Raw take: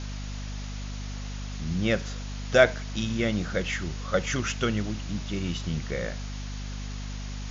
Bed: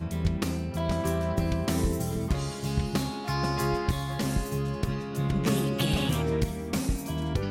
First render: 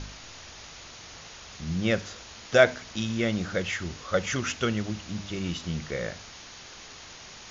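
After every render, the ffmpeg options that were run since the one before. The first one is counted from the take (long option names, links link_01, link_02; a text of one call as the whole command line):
ffmpeg -i in.wav -af "bandreject=frequency=50:width_type=h:width=4,bandreject=frequency=100:width_type=h:width=4,bandreject=frequency=150:width_type=h:width=4,bandreject=frequency=200:width_type=h:width=4,bandreject=frequency=250:width_type=h:width=4,bandreject=frequency=300:width_type=h:width=4" out.wav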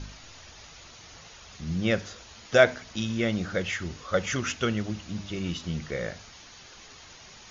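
ffmpeg -i in.wav -af "afftdn=noise_reduction=6:noise_floor=-46" out.wav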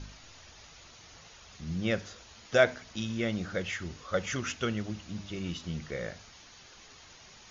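ffmpeg -i in.wav -af "volume=-4.5dB" out.wav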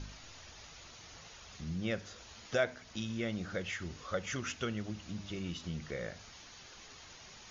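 ffmpeg -i in.wav -af "acompressor=threshold=-42dB:ratio=1.5" out.wav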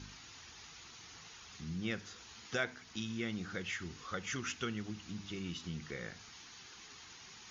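ffmpeg -i in.wav -af "highpass=frequency=130:poles=1,equalizer=frequency=590:width_type=o:width=0.4:gain=-14.5" out.wav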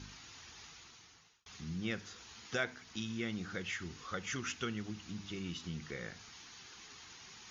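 ffmpeg -i in.wav -filter_complex "[0:a]asplit=2[link_01][link_02];[link_01]atrim=end=1.46,asetpts=PTS-STARTPTS,afade=type=out:start_time=0.64:duration=0.82[link_03];[link_02]atrim=start=1.46,asetpts=PTS-STARTPTS,afade=type=in:duration=0.004:curve=hsin[link_04];[link_03][link_04]concat=n=2:v=0:a=1" out.wav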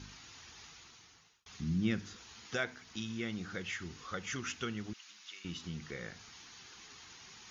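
ffmpeg -i in.wav -filter_complex "[0:a]asettb=1/sr,asplit=3[link_01][link_02][link_03];[link_01]atrim=end=1.604[link_04];[link_02]atrim=start=1.6:end=2.17,asetpts=PTS-STARTPTS,afade=type=in:duration=0.004:curve=qsin,afade=type=out:start_time=0.566:duration=0.004:curve=qsin,lowshelf=frequency=370:width_type=q:width=1.5:gain=6.5[link_05];[link_03]atrim=start=2.166[link_06];[link_04][link_05]acrossfade=duration=0.004:curve1=hsin:curve2=qsin[link_07];[link_07][link_06]acrossfade=duration=0.004:curve1=qsin:curve2=hsin,asettb=1/sr,asplit=3[link_08][link_09][link_10];[link_08]atrim=end=4.934[link_11];[link_09]atrim=start=4.93:end=5.45,asetpts=PTS-STARTPTS,afade=type=in:duration=0.004:curve=qsin,afade=type=out:start_time=0.516:duration=0.004:curve=qsin,highpass=1400[link_12];[link_10]atrim=start=5.446[link_13];[link_11][link_12]acrossfade=duration=0.004:curve1=hsin:curve2=qsin[link_14];[link_14][link_13]acrossfade=duration=0.004:curve1=qsin:curve2=hsin" out.wav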